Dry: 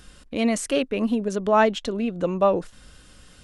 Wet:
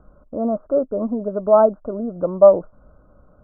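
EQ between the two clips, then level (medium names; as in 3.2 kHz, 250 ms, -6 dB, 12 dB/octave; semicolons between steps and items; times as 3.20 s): steep low-pass 1.4 kHz 96 dB/octave; peaking EQ 610 Hz +13.5 dB 0.26 oct; -1.0 dB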